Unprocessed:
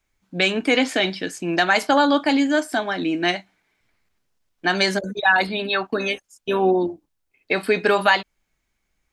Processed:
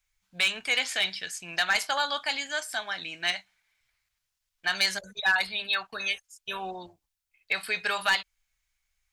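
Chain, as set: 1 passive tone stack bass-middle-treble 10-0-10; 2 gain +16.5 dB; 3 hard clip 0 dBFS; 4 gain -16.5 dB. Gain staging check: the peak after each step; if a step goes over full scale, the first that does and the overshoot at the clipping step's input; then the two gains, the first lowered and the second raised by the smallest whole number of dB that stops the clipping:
-9.0, +7.5, 0.0, -16.5 dBFS; step 2, 7.5 dB; step 2 +8.5 dB, step 4 -8.5 dB

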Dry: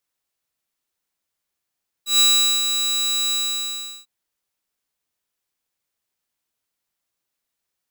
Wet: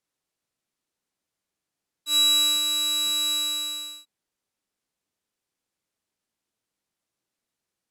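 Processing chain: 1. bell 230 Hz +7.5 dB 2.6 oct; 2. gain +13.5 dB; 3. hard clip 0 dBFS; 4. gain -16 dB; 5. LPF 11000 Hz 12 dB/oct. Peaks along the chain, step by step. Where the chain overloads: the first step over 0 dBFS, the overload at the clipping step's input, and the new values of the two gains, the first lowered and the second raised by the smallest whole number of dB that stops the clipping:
-8.5, +5.0, 0.0, -16.0, -14.0 dBFS; step 2, 5.0 dB; step 2 +8.5 dB, step 4 -11 dB

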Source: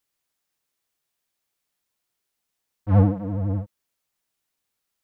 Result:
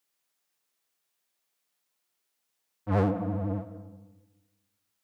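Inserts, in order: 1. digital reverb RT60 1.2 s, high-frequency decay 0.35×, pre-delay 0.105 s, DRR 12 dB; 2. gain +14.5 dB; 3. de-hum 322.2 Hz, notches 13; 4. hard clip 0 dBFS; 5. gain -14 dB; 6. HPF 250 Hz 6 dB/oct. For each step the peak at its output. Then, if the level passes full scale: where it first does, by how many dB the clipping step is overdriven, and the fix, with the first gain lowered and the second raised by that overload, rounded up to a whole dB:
-7.0, +7.5, +7.5, 0.0, -14.0, -12.0 dBFS; step 2, 7.5 dB; step 2 +6.5 dB, step 5 -6 dB

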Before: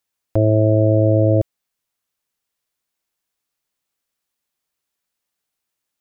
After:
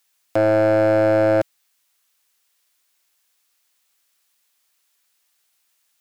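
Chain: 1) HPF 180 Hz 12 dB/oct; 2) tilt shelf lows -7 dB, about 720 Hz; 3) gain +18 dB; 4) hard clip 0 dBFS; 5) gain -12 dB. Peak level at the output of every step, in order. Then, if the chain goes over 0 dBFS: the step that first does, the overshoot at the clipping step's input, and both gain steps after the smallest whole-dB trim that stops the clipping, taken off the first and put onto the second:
-7.0, -10.0, +8.0, 0.0, -12.0 dBFS; step 3, 8.0 dB; step 3 +10 dB, step 5 -4 dB

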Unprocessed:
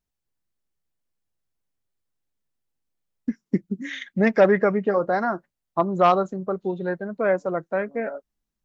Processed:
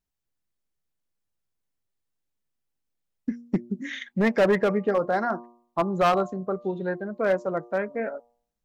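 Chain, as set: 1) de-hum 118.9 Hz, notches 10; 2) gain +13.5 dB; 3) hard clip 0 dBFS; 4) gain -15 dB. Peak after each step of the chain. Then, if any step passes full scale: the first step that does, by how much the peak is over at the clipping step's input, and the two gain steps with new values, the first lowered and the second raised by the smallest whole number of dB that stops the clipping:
-6.5, +7.0, 0.0, -15.0 dBFS; step 2, 7.0 dB; step 2 +6.5 dB, step 4 -8 dB

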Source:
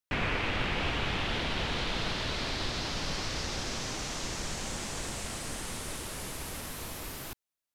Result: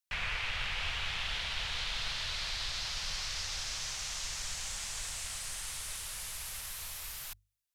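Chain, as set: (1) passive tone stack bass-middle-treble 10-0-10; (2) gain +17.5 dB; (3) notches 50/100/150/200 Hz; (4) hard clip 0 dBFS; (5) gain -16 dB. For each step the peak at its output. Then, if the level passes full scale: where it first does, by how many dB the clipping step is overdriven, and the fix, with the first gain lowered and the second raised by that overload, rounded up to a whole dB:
-23.5, -6.0, -6.0, -6.0, -22.0 dBFS; no overload

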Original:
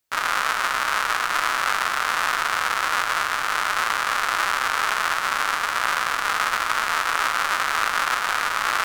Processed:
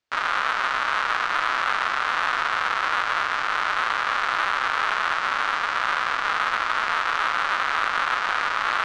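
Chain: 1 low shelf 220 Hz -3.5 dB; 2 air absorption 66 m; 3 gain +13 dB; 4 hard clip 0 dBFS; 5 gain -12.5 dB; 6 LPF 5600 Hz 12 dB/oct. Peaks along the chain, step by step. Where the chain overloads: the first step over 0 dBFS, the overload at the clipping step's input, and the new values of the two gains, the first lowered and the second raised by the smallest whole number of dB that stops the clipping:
-4.5, -6.0, +7.0, 0.0, -12.5, -12.0 dBFS; step 3, 7.0 dB; step 3 +6 dB, step 5 -5.5 dB

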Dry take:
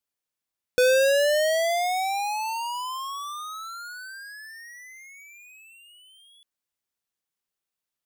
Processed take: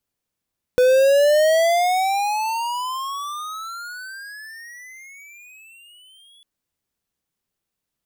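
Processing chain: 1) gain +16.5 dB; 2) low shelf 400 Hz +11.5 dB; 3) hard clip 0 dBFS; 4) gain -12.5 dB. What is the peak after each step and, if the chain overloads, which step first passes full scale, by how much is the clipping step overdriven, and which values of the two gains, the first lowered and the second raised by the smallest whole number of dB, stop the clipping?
-1.0, +8.5, 0.0, -12.5 dBFS; step 2, 8.5 dB; step 1 +7.5 dB, step 4 -3.5 dB

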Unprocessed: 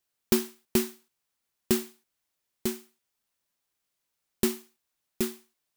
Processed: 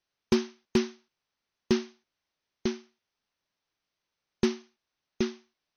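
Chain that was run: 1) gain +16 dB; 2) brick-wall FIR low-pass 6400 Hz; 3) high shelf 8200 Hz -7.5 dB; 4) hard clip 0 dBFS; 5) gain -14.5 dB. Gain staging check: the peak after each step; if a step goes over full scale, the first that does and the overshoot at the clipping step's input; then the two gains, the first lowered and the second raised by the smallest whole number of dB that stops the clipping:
+8.0, +6.5, +6.0, 0.0, -14.5 dBFS; step 1, 6.0 dB; step 1 +10 dB, step 5 -8.5 dB

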